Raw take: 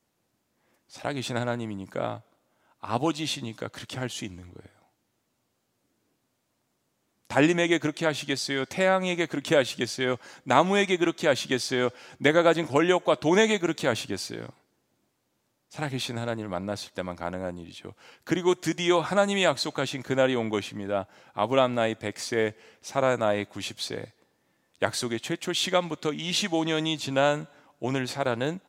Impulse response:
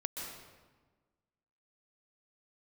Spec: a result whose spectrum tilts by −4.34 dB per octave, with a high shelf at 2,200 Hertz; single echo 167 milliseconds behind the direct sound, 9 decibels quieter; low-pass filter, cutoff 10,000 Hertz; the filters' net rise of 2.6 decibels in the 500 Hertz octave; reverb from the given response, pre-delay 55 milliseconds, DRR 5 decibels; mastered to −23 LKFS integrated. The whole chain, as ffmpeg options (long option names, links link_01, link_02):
-filter_complex "[0:a]lowpass=10000,equalizer=frequency=500:width_type=o:gain=3.5,highshelf=frequency=2200:gain=-5,aecho=1:1:167:0.355,asplit=2[link_01][link_02];[1:a]atrim=start_sample=2205,adelay=55[link_03];[link_02][link_03]afir=irnorm=-1:irlink=0,volume=-6.5dB[link_04];[link_01][link_04]amix=inputs=2:normalize=0,volume=1dB"